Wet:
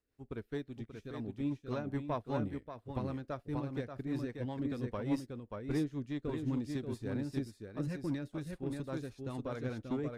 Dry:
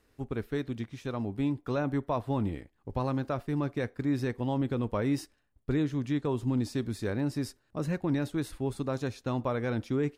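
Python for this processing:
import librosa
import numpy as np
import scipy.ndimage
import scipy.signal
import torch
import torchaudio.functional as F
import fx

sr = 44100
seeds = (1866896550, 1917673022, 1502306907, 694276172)

p1 = x + fx.echo_single(x, sr, ms=583, db=-4.0, dry=0)
p2 = fx.cheby_harmonics(p1, sr, harmonics=(6,), levels_db=(-27,), full_scale_db=-15.0)
p3 = fx.rotary(p2, sr, hz=5.0)
p4 = fx.upward_expand(p3, sr, threshold_db=-50.0, expansion=1.5)
y = F.gain(torch.from_numpy(p4), -3.5).numpy()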